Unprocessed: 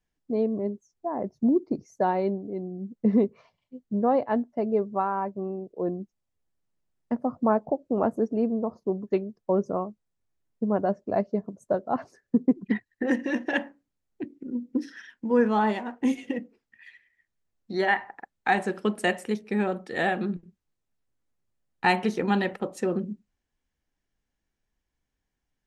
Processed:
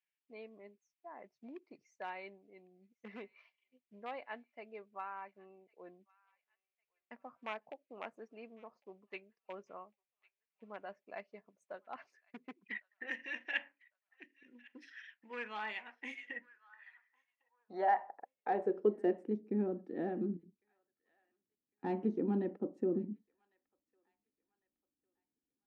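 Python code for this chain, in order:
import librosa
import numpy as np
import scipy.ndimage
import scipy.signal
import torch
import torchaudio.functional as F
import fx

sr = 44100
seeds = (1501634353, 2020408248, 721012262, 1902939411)

y = np.clip(10.0 ** (14.5 / 20.0) * x, -1.0, 1.0) / 10.0 ** (14.5 / 20.0)
y = fx.echo_wet_highpass(y, sr, ms=1103, feedback_pct=32, hz=1500.0, wet_db=-23.0)
y = fx.filter_sweep_bandpass(y, sr, from_hz=2400.0, to_hz=290.0, start_s=15.9, end_s=19.38, q=3.3)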